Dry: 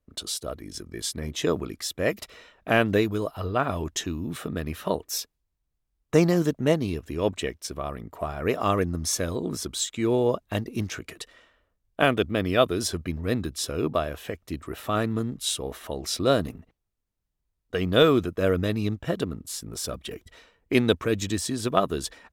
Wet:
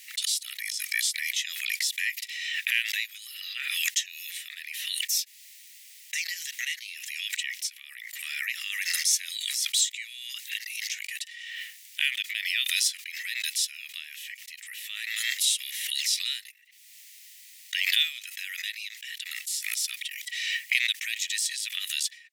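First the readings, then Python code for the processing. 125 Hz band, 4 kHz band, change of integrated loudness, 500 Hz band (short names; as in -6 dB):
under -40 dB, +5.5 dB, -2.0 dB, under -40 dB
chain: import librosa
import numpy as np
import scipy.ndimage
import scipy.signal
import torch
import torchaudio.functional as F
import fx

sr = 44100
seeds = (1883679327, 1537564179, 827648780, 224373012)

y = scipy.signal.sosfilt(scipy.signal.cheby1(6, 1.0, 1900.0, 'highpass', fs=sr, output='sos'), x)
y = fx.pre_swell(y, sr, db_per_s=28.0)
y = y * 10.0 ** (3.5 / 20.0)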